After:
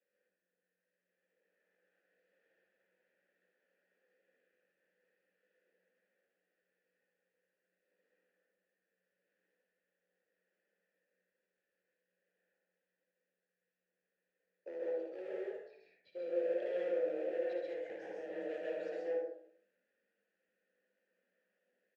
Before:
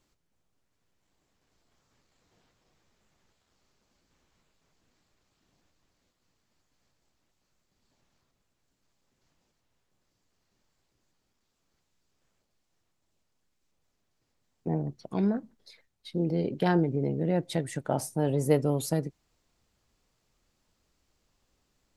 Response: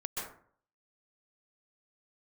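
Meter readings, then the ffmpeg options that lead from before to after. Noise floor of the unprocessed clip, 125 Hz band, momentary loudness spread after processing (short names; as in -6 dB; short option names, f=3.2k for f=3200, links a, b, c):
-78 dBFS, under -40 dB, 14 LU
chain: -filter_complex "[0:a]lowpass=f=6k:w=0.5412,lowpass=f=6k:w=1.3066,equalizer=f=1.3k:w=1.2:g=13,bandreject=f=51.79:t=h:w=4,bandreject=f=103.58:t=h:w=4,bandreject=f=155.37:t=h:w=4,bandreject=f=207.16:t=h:w=4,bandreject=f=258.95:t=h:w=4,bandreject=f=310.74:t=h:w=4,bandreject=f=362.53:t=h:w=4,bandreject=f=414.32:t=h:w=4,bandreject=f=466.11:t=h:w=4,bandreject=f=517.9:t=h:w=4,bandreject=f=569.69:t=h:w=4,bandreject=f=621.48:t=h:w=4,bandreject=f=673.27:t=h:w=4,bandreject=f=725.06:t=h:w=4,bandreject=f=776.85:t=h:w=4,bandreject=f=828.64:t=h:w=4,bandreject=f=880.43:t=h:w=4,bandreject=f=932.22:t=h:w=4,bandreject=f=984.01:t=h:w=4,bandreject=f=1.0358k:t=h:w=4,bandreject=f=1.08759k:t=h:w=4,bandreject=f=1.13938k:t=h:w=4,bandreject=f=1.19117k:t=h:w=4,bandreject=f=1.24296k:t=h:w=4,bandreject=f=1.29475k:t=h:w=4,bandreject=f=1.34654k:t=h:w=4,bandreject=f=1.39833k:t=h:w=4,bandreject=f=1.45012k:t=h:w=4,bandreject=f=1.50191k:t=h:w=4,bandreject=f=1.5537k:t=h:w=4,bandreject=f=1.60549k:t=h:w=4,bandreject=f=1.65728k:t=h:w=4,acrossover=split=630|2500[a][b][c];[b]acompressor=threshold=-45dB:ratio=6[d];[a][d][c]amix=inputs=3:normalize=0,afreqshift=180,asplit=2[e][f];[f]acrusher=samples=38:mix=1:aa=0.000001:lfo=1:lforange=60.8:lforate=0.46,volume=-8dB[g];[e][g]amix=inputs=2:normalize=0,asoftclip=type=hard:threshold=-26.5dB,asplit=3[h][i][j];[h]bandpass=f=530:t=q:w=8,volume=0dB[k];[i]bandpass=f=1.84k:t=q:w=8,volume=-6dB[l];[j]bandpass=f=2.48k:t=q:w=8,volume=-9dB[m];[k][l][m]amix=inputs=3:normalize=0,aecho=1:1:60|76:0.422|0.376[n];[1:a]atrim=start_sample=2205[o];[n][o]afir=irnorm=-1:irlink=0,volume=-4dB"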